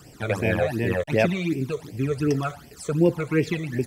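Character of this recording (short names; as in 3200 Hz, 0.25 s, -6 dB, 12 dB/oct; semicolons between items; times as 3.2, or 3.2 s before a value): phasing stages 12, 2.7 Hz, lowest notch 270–1300 Hz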